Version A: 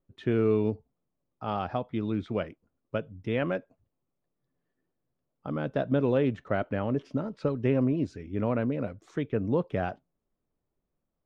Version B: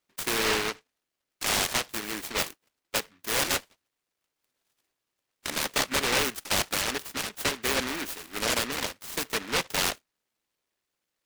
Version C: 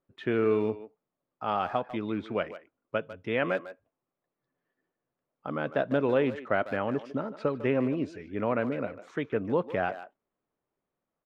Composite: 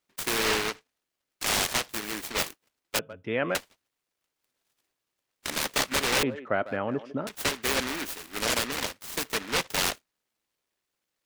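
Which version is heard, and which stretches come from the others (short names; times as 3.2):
B
2.99–3.55 from C
6.23–7.27 from C
not used: A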